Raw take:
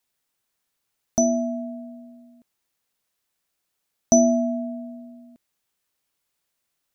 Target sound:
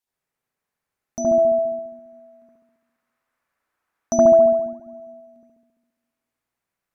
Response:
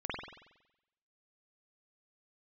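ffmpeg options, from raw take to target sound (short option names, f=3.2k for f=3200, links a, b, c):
-filter_complex "[0:a]asplit=3[a][b][c];[a]afade=t=out:st=1.19:d=0.02[d];[b]equalizer=f=1.3k:t=o:w=1.7:g=11,afade=t=in:st=1.19:d=0.02,afade=t=out:st=4.43:d=0.02[e];[c]afade=t=in:st=4.43:d=0.02[f];[d][e][f]amix=inputs=3:normalize=0[g];[1:a]atrim=start_sample=2205,asetrate=29988,aresample=44100[h];[g][h]afir=irnorm=-1:irlink=0,volume=-7dB"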